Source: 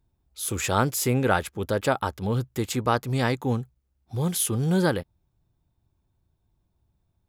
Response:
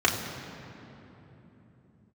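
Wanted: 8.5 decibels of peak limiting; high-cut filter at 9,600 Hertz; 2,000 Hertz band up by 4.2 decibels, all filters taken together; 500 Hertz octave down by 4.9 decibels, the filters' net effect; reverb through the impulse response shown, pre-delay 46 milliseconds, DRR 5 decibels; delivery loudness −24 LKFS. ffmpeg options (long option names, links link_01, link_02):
-filter_complex "[0:a]lowpass=9600,equalizer=frequency=500:width_type=o:gain=-6.5,equalizer=frequency=2000:width_type=o:gain=6.5,alimiter=limit=-14.5dB:level=0:latency=1,asplit=2[link_01][link_02];[1:a]atrim=start_sample=2205,adelay=46[link_03];[link_02][link_03]afir=irnorm=-1:irlink=0,volume=-20.5dB[link_04];[link_01][link_04]amix=inputs=2:normalize=0,volume=2.5dB"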